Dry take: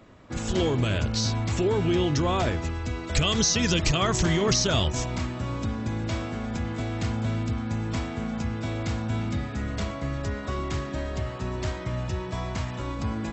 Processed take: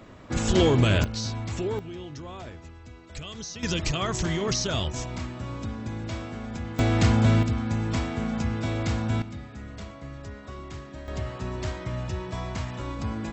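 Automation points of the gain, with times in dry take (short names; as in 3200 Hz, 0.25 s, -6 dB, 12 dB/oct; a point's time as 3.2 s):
+4.5 dB
from 1.04 s -5 dB
from 1.79 s -15 dB
from 3.63 s -4 dB
from 6.79 s +8 dB
from 7.43 s +2 dB
from 9.22 s -9.5 dB
from 11.08 s -1.5 dB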